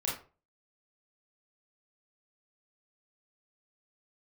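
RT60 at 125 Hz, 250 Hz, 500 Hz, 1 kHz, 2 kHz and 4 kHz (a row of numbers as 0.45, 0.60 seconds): 0.45, 0.35, 0.40, 0.35, 0.30, 0.25 seconds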